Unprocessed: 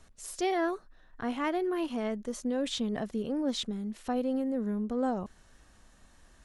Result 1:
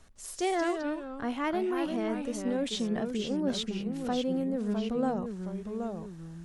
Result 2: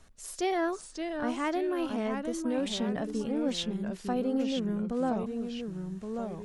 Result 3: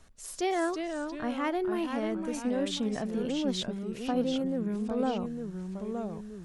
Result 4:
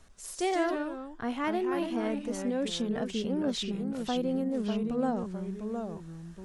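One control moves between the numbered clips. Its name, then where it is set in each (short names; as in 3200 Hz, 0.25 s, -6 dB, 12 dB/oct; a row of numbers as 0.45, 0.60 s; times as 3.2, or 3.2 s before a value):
echoes that change speed, time: 157, 519, 302, 97 ms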